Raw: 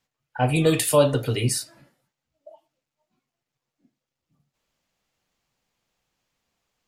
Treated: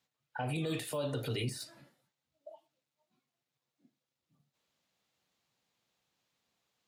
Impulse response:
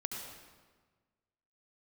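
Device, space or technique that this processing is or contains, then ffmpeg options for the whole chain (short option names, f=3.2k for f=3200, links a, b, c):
broadcast voice chain: -af "highpass=97,deesser=0.65,acompressor=threshold=-23dB:ratio=5,equalizer=f=3.8k:t=o:w=0.38:g=5,alimiter=limit=-22.5dB:level=0:latency=1:release=20,volume=-4.5dB"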